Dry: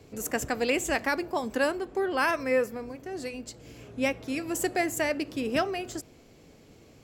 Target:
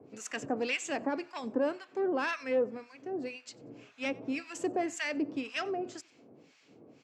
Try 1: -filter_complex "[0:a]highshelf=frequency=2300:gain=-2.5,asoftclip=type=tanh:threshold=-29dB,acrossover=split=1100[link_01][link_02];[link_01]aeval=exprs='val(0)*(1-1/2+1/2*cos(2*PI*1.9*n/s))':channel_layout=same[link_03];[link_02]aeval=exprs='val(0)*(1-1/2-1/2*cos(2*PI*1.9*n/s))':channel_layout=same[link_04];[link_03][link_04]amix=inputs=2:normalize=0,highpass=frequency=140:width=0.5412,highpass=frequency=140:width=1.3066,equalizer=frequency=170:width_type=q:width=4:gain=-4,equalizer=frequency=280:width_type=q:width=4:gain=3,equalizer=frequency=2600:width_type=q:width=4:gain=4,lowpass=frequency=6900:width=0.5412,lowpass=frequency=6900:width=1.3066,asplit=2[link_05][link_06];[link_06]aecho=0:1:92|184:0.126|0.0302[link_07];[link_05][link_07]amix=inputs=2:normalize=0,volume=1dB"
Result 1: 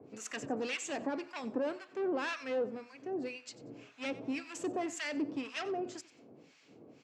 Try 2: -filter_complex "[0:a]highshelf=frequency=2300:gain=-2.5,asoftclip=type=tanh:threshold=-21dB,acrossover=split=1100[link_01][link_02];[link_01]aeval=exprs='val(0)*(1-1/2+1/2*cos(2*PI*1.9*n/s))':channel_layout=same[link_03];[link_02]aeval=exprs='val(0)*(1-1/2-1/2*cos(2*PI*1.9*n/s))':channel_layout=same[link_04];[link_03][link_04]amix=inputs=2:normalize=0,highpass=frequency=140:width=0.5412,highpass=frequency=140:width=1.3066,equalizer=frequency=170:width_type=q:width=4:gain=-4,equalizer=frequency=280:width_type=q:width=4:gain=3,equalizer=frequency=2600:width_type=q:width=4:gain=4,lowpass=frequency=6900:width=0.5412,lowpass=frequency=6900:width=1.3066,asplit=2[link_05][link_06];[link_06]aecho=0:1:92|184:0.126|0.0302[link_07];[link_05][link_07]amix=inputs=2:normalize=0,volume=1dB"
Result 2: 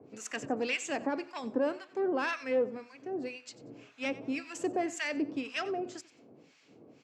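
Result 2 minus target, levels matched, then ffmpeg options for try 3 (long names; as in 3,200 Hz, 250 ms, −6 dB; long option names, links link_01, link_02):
echo-to-direct +7.5 dB
-filter_complex "[0:a]highshelf=frequency=2300:gain=-2.5,asoftclip=type=tanh:threshold=-21dB,acrossover=split=1100[link_01][link_02];[link_01]aeval=exprs='val(0)*(1-1/2+1/2*cos(2*PI*1.9*n/s))':channel_layout=same[link_03];[link_02]aeval=exprs='val(0)*(1-1/2-1/2*cos(2*PI*1.9*n/s))':channel_layout=same[link_04];[link_03][link_04]amix=inputs=2:normalize=0,highpass=frequency=140:width=0.5412,highpass=frequency=140:width=1.3066,equalizer=frequency=170:width_type=q:width=4:gain=-4,equalizer=frequency=280:width_type=q:width=4:gain=3,equalizer=frequency=2600:width_type=q:width=4:gain=4,lowpass=frequency=6900:width=0.5412,lowpass=frequency=6900:width=1.3066,asplit=2[link_05][link_06];[link_06]aecho=0:1:92|184:0.0531|0.0127[link_07];[link_05][link_07]amix=inputs=2:normalize=0,volume=1dB"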